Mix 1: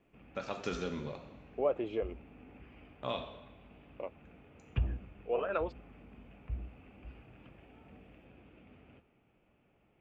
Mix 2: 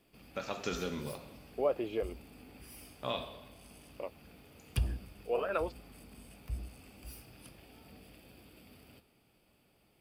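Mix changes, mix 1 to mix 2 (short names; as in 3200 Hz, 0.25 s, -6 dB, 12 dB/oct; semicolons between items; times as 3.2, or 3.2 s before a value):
background: remove steep low-pass 2900 Hz 36 dB/oct; master: add high shelf 4400 Hz +8.5 dB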